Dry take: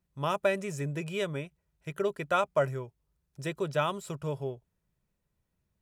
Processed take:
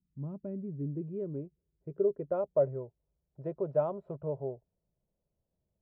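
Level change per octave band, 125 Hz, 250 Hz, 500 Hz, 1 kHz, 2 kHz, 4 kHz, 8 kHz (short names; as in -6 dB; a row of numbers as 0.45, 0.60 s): -3.5 dB, -1.0 dB, -0.5 dB, -11.5 dB, under -25 dB, under -35 dB, under -30 dB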